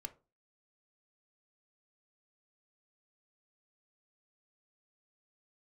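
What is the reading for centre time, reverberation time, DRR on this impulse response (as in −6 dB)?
5 ms, 0.30 s, 8.5 dB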